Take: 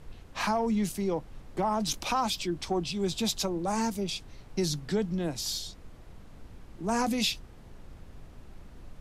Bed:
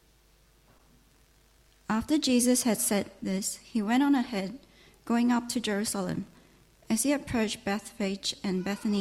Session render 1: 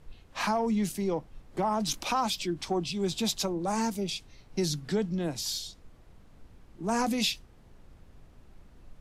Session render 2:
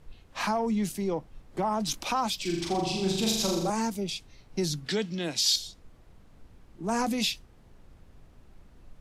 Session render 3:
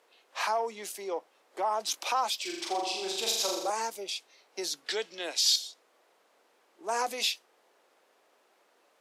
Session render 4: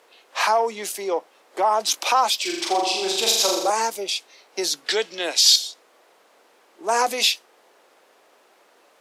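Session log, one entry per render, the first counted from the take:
noise print and reduce 6 dB
2.41–3.7 flutter echo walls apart 7.1 m, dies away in 0.91 s; 4.86–5.56 weighting filter D
HPF 440 Hz 24 dB/oct
gain +10 dB

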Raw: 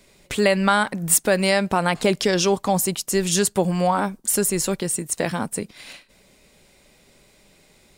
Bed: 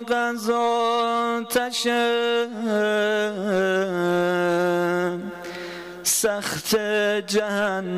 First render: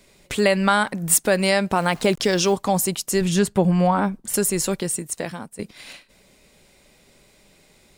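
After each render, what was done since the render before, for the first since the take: 1.77–2.54 level-crossing sampler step -41.5 dBFS; 3.21–4.34 tone controls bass +6 dB, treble -9 dB; 4.84–5.59 fade out, to -16 dB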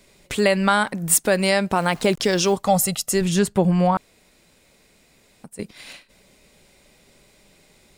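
2.67–3.13 comb 1.5 ms, depth 74%; 3.97–5.44 room tone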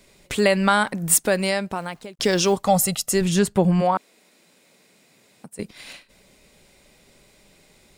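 1.15–2.19 fade out; 3.8–5.57 HPF 240 Hz -> 97 Hz 24 dB/oct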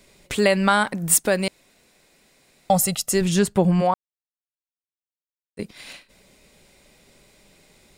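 1.48–2.7 room tone; 3.94–5.57 mute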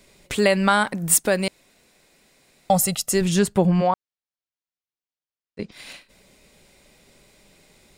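3.66–5.72 LPF 6200 Hz 24 dB/oct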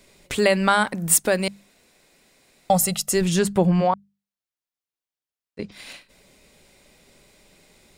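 notches 50/100/150/200 Hz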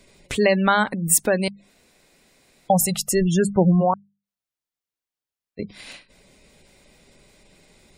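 spectral gate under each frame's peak -25 dB strong; low shelf 240 Hz +3.5 dB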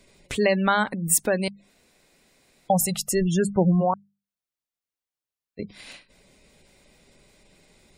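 gain -3 dB

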